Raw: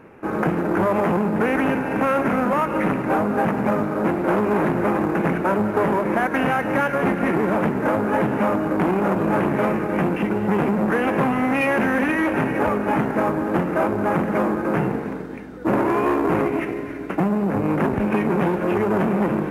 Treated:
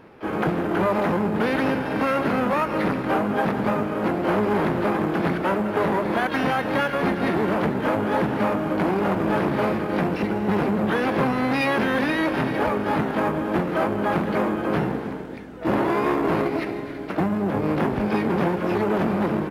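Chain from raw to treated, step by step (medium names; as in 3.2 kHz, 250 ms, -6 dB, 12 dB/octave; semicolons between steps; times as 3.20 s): harmony voices -12 st -16 dB, +7 st -15 dB, +12 st -12 dB; trim -2.5 dB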